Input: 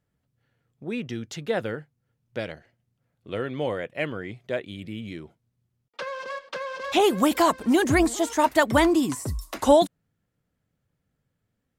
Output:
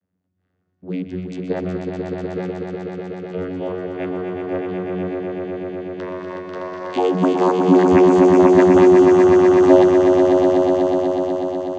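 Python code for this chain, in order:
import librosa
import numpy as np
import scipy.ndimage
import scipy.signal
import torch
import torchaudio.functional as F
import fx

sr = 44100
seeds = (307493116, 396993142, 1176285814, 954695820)

y = fx.vocoder(x, sr, bands=16, carrier='saw', carrier_hz=91.5)
y = fx.echo_swell(y, sr, ms=123, loudest=5, wet_db=-5.5)
y = y * librosa.db_to_amplitude(3.0)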